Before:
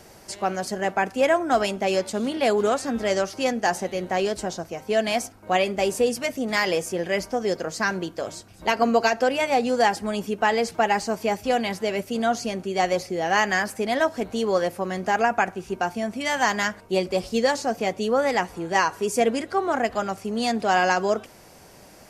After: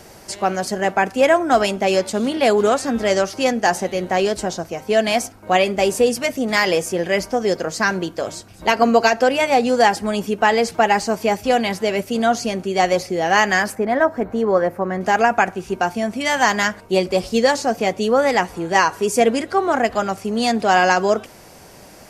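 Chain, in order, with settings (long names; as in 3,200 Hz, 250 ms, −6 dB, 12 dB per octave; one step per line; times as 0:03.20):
0:13.75–0:15.01: flat-topped bell 5,600 Hz −15.5 dB 2.5 octaves
level +5.5 dB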